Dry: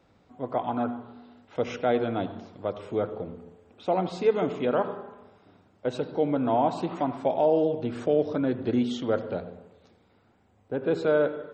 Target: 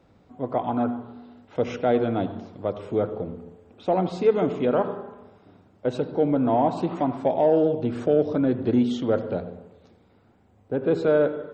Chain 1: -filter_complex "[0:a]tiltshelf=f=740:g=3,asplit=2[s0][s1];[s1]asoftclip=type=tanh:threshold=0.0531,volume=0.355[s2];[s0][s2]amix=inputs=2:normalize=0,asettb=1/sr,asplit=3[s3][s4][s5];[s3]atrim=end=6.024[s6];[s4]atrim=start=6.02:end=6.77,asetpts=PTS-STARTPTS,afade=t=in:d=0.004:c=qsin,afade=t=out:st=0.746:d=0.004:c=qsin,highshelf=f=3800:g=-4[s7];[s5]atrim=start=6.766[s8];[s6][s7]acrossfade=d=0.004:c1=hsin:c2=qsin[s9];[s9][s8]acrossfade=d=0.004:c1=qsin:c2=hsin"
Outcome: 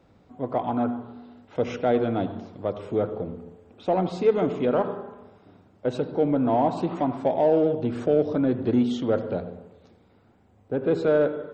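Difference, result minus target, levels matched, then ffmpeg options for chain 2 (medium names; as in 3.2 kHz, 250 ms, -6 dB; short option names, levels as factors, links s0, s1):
saturation: distortion +7 dB
-filter_complex "[0:a]tiltshelf=f=740:g=3,asplit=2[s0][s1];[s1]asoftclip=type=tanh:threshold=0.126,volume=0.355[s2];[s0][s2]amix=inputs=2:normalize=0,asettb=1/sr,asplit=3[s3][s4][s5];[s3]atrim=end=6.024[s6];[s4]atrim=start=6.02:end=6.77,asetpts=PTS-STARTPTS,afade=t=in:d=0.004:c=qsin,afade=t=out:st=0.746:d=0.004:c=qsin,highshelf=f=3800:g=-4[s7];[s5]atrim=start=6.766[s8];[s6][s7]acrossfade=d=0.004:c1=hsin:c2=qsin[s9];[s9][s8]acrossfade=d=0.004:c1=qsin:c2=hsin"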